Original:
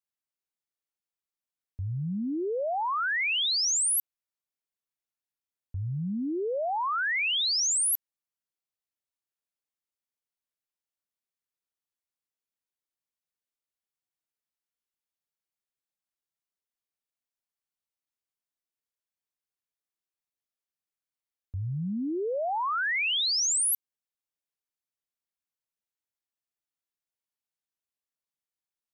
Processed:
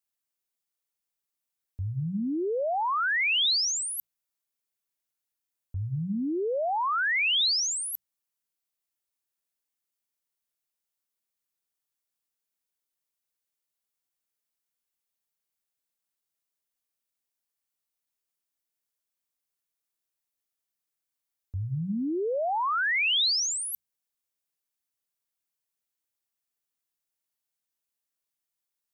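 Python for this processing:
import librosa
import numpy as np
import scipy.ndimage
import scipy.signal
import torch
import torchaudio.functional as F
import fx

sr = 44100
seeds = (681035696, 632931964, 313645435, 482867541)

y = fx.high_shelf(x, sr, hz=6600.0, db=7.5)
y = fx.over_compress(y, sr, threshold_db=-25.0, ratio=-0.5)
y = fx.hum_notches(y, sr, base_hz=60, count=3)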